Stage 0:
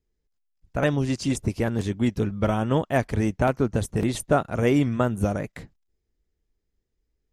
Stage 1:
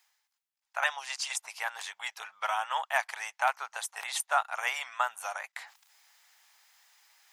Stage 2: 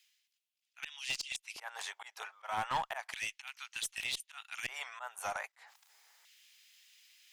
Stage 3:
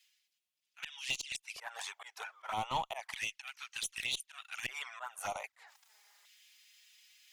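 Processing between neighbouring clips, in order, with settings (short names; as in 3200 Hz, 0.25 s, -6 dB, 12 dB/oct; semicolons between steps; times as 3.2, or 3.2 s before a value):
elliptic high-pass 810 Hz, stop band 60 dB; reverse; upward compressor, threshold -43 dBFS; reverse; gain +2 dB
auto swell 0.196 s; LFO high-pass square 0.32 Hz 380–2800 Hz; one-sided clip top -29.5 dBFS; gain -2 dB
envelope flanger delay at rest 5.6 ms, full sweep at -34.5 dBFS; gain +3 dB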